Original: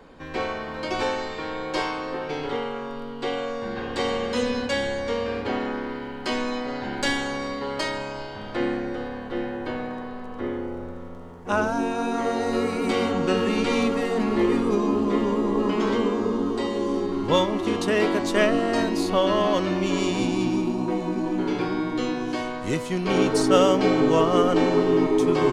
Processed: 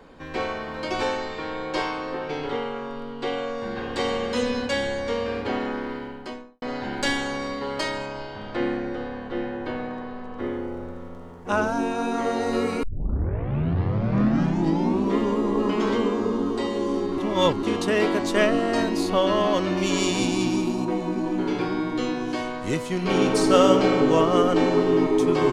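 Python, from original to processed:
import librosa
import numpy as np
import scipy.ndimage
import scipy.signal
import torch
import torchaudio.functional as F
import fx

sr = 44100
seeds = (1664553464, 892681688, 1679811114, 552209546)

y = fx.high_shelf(x, sr, hz=9700.0, db=-9.0, at=(1.17, 3.58))
y = fx.studio_fade_out(y, sr, start_s=5.92, length_s=0.7)
y = fx.air_absorb(y, sr, metres=58.0, at=(8.06, 10.4))
y = fx.high_shelf(y, sr, hz=3400.0, db=9.0, at=(19.77, 20.85))
y = fx.reverb_throw(y, sr, start_s=22.88, length_s=0.98, rt60_s=2.2, drr_db=5.0)
y = fx.edit(y, sr, fx.tape_start(start_s=12.83, length_s=2.36),
    fx.reverse_span(start_s=17.18, length_s=0.45), tone=tone)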